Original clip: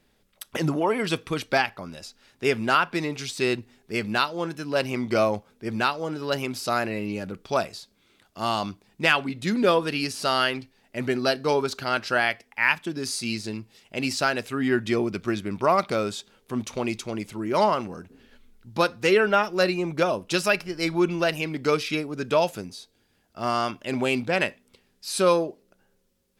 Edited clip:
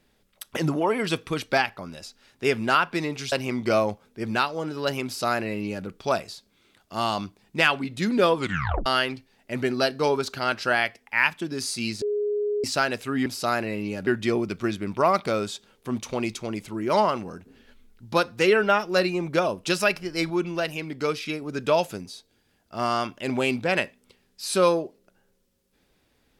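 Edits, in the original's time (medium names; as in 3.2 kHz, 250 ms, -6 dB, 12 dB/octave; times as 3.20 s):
3.32–4.77 s: delete
6.50–7.31 s: copy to 14.71 s
9.80 s: tape stop 0.51 s
13.47–14.09 s: bleep 415 Hz -22.5 dBFS
20.94–22.06 s: gain -3.5 dB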